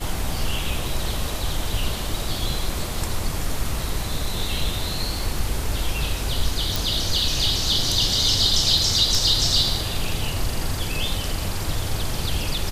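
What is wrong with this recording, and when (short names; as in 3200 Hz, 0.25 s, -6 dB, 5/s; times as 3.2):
6.76 pop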